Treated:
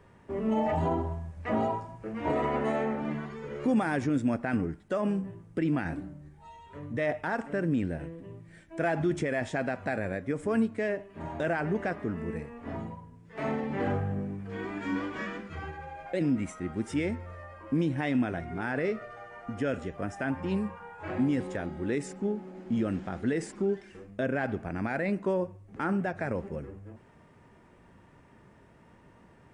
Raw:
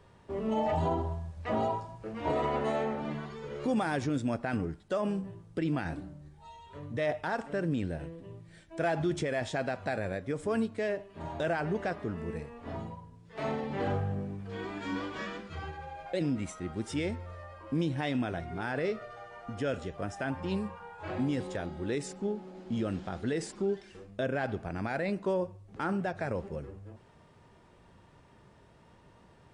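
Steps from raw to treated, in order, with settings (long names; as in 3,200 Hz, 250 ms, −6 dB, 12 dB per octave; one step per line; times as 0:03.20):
octave-band graphic EQ 250/2,000/4,000 Hz +5/+5/−7 dB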